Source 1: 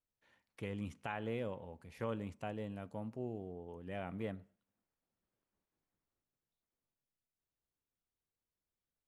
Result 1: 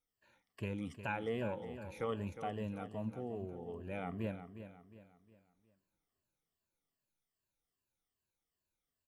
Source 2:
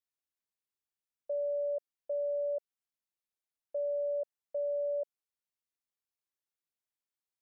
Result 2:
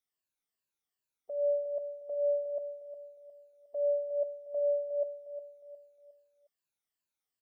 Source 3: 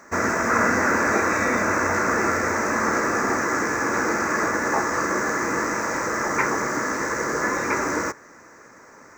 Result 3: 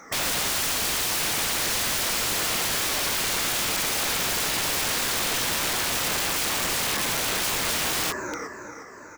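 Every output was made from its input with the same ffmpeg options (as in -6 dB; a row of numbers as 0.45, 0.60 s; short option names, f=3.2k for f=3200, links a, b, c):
-af "afftfilt=real='re*pow(10,13/40*sin(2*PI*(1.4*log(max(b,1)*sr/1024/100)/log(2)-(-2.5)*(pts-256)/sr)))':imag='im*pow(10,13/40*sin(2*PI*(1.4*log(max(b,1)*sr/1024/100)/log(2)-(-2.5)*(pts-256)/sr)))':win_size=1024:overlap=0.75,aecho=1:1:359|718|1077|1436:0.282|0.11|0.0429|0.0167,aeval=exprs='(mod(11.2*val(0)+1,2)-1)/11.2':c=same"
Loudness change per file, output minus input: +2.0, +2.0, -1.0 LU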